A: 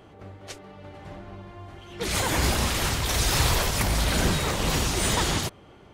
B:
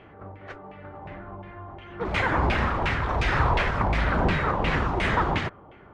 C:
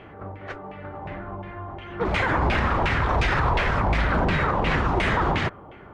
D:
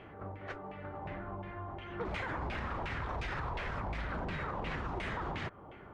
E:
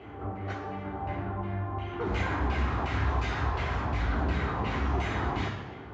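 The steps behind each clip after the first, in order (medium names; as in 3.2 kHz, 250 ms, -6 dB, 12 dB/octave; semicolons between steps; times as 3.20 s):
LFO low-pass saw down 2.8 Hz 830–2500 Hz
peak limiter -18.5 dBFS, peak gain reduction 8 dB; trim +5 dB
compression 6:1, threshold -28 dBFS, peak gain reduction 10 dB; trim -7 dB
reverberation RT60 1.0 s, pre-delay 3 ms, DRR -3.5 dB; trim -1.5 dB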